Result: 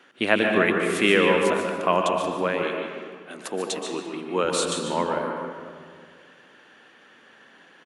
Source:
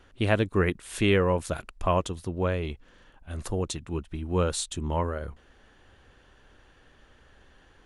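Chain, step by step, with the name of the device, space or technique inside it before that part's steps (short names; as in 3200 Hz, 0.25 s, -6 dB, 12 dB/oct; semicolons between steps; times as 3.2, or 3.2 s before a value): PA in a hall (HPF 190 Hz 24 dB/oct; bell 2100 Hz +6 dB 1.6 oct; echo 0.146 s -10 dB; reverb RT60 1.9 s, pre-delay 0.116 s, DRR 3 dB); 2.63–4.45 HPF 220 Hz 12 dB/oct; gain +2 dB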